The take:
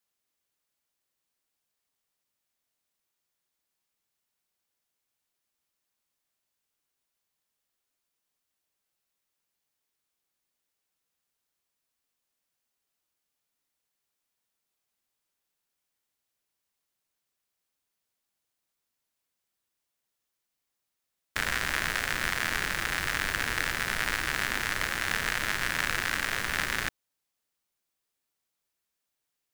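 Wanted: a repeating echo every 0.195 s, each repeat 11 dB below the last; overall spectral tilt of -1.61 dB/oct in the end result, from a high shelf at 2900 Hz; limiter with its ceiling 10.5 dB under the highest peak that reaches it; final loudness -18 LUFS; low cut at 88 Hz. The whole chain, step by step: HPF 88 Hz; high shelf 2900 Hz +4.5 dB; limiter -17 dBFS; feedback echo 0.195 s, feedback 28%, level -11 dB; gain +15 dB

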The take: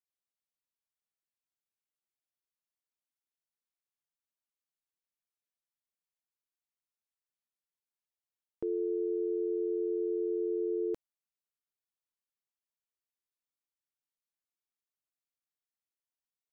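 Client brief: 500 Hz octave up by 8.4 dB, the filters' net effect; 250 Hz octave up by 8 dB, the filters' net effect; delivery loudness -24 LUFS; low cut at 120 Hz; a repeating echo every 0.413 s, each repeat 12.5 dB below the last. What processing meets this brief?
HPF 120 Hz; bell 250 Hz +9 dB; bell 500 Hz +7 dB; feedback echo 0.413 s, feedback 24%, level -12.5 dB; gain +2 dB

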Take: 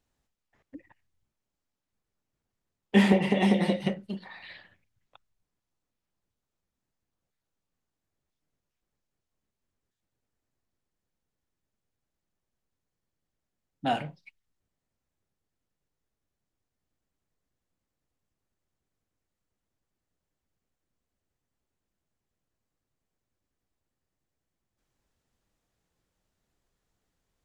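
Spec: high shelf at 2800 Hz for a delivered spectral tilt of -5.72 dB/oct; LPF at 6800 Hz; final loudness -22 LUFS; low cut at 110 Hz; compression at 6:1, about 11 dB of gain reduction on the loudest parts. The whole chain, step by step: HPF 110 Hz; LPF 6800 Hz; high shelf 2800 Hz -8 dB; compressor 6:1, threshold -27 dBFS; gain +12 dB

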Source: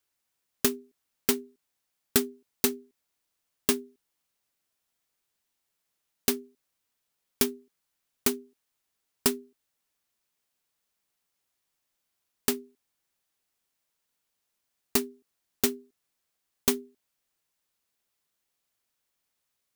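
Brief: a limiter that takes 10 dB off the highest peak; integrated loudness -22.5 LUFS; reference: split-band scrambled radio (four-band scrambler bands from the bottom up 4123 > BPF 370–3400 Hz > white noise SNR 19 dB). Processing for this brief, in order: limiter -17 dBFS; four-band scrambler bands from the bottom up 4123; BPF 370–3400 Hz; white noise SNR 19 dB; gain +14.5 dB

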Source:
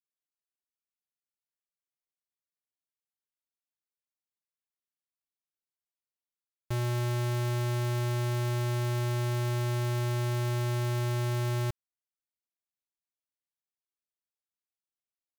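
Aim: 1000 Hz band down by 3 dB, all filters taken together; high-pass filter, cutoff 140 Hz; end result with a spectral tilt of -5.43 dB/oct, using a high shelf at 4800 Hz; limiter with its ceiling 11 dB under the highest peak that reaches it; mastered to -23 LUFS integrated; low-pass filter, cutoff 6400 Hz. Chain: HPF 140 Hz; LPF 6400 Hz; bell 1000 Hz -4 dB; high shelf 4800 Hz +6 dB; gain +21.5 dB; limiter -11 dBFS

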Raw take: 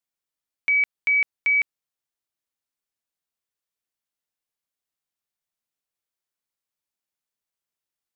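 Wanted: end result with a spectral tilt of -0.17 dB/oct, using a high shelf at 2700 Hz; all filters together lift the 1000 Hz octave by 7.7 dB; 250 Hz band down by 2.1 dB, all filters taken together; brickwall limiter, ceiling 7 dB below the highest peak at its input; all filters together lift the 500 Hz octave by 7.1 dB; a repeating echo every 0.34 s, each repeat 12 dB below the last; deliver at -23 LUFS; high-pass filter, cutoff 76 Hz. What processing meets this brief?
HPF 76 Hz; bell 250 Hz -7 dB; bell 500 Hz +8 dB; bell 1000 Hz +7.5 dB; high shelf 2700 Hz +3.5 dB; limiter -18.5 dBFS; feedback echo 0.34 s, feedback 25%, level -12 dB

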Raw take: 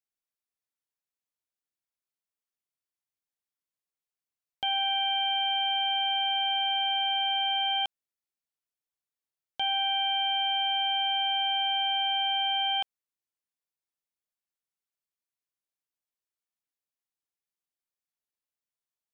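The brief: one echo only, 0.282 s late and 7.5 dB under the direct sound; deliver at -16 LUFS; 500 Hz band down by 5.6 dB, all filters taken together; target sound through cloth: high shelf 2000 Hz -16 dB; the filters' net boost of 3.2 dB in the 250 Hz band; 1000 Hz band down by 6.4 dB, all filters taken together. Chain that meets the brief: bell 250 Hz +6 dB; bell 500 Hz -4 dB; bell 1000 Hz -4.5 dB; high shelf 2000 Hz -16 dB; echo 0.282 s -7.5 dB; gain +22 dB

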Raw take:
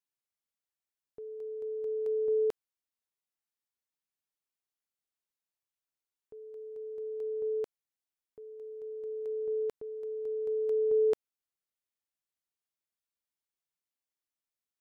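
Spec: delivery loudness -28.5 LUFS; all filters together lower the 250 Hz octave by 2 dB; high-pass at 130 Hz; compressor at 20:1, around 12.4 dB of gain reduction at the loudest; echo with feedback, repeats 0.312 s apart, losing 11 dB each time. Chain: HPF 130 Hz; bell 250 Hz -4.5 dB; compressor 20:1, threshold -39 dBFS; feedback echo 0.312 s, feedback 28%, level -11 dB; gain +15 dB

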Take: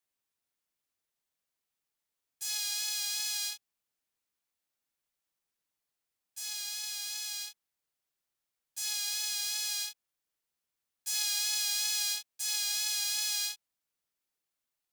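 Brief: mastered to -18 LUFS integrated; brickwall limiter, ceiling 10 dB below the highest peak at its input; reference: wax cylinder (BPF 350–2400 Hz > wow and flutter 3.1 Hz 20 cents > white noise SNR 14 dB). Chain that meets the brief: limiter -24 dBFS; BPF 350–2400 Hz; wow and flutter 3.1 Hz 20 cents; white noise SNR 14 dB; gain +29 dB

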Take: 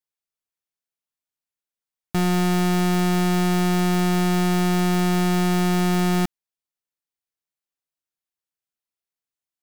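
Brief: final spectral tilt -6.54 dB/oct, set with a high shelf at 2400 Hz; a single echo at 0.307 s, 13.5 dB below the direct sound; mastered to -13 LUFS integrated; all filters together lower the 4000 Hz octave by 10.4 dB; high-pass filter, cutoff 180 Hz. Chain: HPF 180 Hz; high shelf 2400 Hz -8.5 dB; bell 4000 Hz -6.5 dB; echo 0.307 s -13.5 dB; gain +9.5 dB

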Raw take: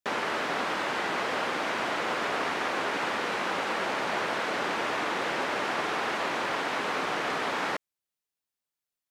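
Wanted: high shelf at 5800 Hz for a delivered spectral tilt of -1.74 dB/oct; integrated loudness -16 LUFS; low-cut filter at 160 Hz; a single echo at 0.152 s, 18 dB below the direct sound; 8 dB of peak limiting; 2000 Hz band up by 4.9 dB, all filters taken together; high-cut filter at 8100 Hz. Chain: HPF 160 Hz; LPF 8100 Hz; bell 2000 Hz +5.5 dB; high shelf 5800 Hz +6 dB; limiter -22 dBFS; echo 0.152 s -18 dB; gain +14 dB

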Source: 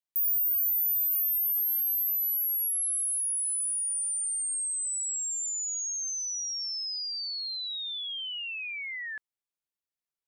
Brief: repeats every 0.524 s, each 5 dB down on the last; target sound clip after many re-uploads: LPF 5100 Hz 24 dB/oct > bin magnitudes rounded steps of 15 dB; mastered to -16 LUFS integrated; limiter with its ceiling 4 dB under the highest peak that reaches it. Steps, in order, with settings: limiter -27 dBFS; LPF 5100 Hz 24 dB/oct; feedback echo 0.524 s, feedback 56%, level -5 dB; bin magnitudes rounded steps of 15 dB; gain +18.5 dB

